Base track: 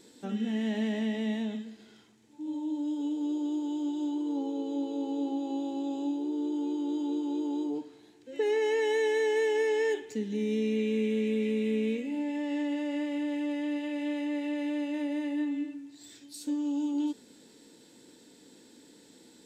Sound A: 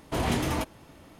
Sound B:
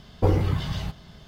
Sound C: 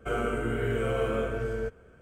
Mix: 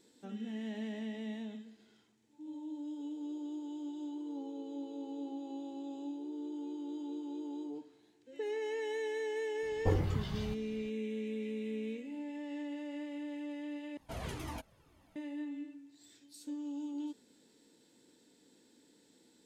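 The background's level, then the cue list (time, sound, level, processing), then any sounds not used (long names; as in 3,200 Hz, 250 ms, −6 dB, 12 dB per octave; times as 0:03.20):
base track −10 dB
0:09.63: mix in B −10 dB
0:13.97: overwrite with A −10 dB + flanger whose copies keep moving one way falling 2 Hz
not used: C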